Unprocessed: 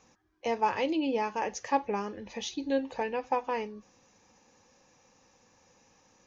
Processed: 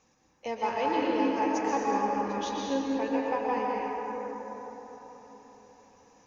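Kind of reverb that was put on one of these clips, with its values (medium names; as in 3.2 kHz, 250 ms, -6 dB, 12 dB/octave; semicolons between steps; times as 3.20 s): plate-style reverb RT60 4.6 s, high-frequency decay 0.35×, pre-delay 110 ms, DRR -4.5 dB; trim -4 dB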